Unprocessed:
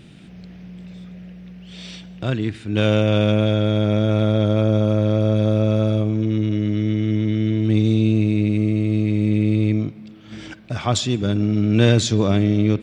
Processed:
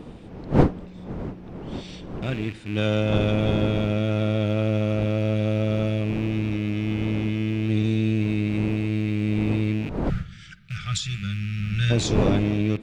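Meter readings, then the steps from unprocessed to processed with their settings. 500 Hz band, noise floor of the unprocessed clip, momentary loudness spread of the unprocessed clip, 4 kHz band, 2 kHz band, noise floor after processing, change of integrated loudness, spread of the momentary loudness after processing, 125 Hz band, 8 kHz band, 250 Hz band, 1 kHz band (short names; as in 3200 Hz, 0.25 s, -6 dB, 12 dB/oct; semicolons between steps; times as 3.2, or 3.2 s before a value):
-5.0 dB, -42 dBFS, 20 LU, -4.5 dB, -1.5 dB, -42 dBFS, -5.0 dB, 14 LU, -5.0 dB, n/a, -5.0 dB, -2.5 dB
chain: rattling part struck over -29 dBFS, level -22 dBFS; wind noise 330 Hz -25 dBFS; spectral gain 10.09–11.91, 210–1200 Hz -25 dB; gain -5.5 dB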